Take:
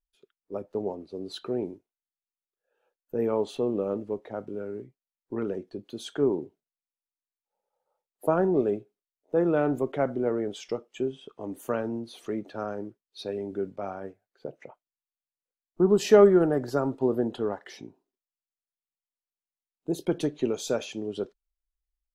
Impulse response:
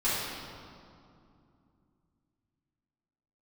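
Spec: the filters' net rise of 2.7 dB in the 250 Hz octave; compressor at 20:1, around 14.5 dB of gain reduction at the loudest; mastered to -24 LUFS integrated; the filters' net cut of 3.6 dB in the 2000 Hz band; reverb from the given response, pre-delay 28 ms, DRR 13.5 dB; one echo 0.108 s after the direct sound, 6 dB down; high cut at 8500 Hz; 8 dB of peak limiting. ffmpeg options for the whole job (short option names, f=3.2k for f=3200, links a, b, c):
-filter_complex "[0:a]lowpass=8.5k,equalizer=f=250:t=o:g=4,equalizer=f=2k:t=o:g=-5.5,acompressor=threshold=-24dB:ratio=20,alimiter=limit=-21.5dB:level=0:latency=1,aecho=1:1:108:0.501,asplit=2[a][b];[1:a]atrim=start_sample=2205,adelay=28[c];[b][c]afir=irnorm=-1:irlink=0,volume=-24.5dB[d];[a][d]amix=inputs=2:normalize=0,volume=9dB"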